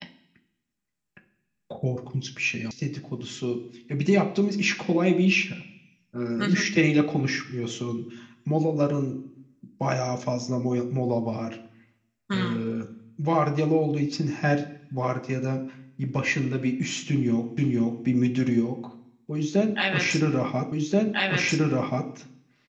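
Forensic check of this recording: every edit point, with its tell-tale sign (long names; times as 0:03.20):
0:02.71: cut off before it has died away
0:17.58: the same again, the last 0.48 s
0:20.72: the same again, the last 1.38 s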